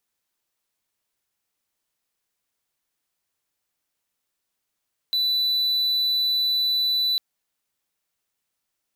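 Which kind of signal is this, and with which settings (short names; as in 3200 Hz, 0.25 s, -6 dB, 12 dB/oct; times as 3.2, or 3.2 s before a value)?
tone triangle 3980 Hz -17.5 dBFS 2.05 s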